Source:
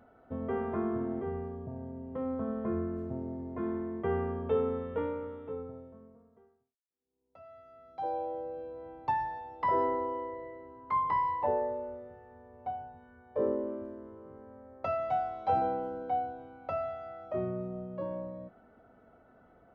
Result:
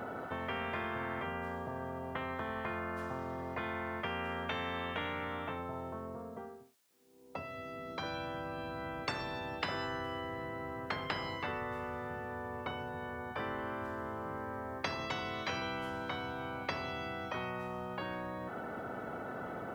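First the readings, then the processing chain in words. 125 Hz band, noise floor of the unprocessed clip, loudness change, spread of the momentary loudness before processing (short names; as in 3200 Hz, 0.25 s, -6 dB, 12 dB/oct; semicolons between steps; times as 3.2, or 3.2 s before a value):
-1.0 dB, -63 dBFS, -5.0 dB, 19 LU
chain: HPF 130 Hz 12 dB/oct; spectral compressor 10:1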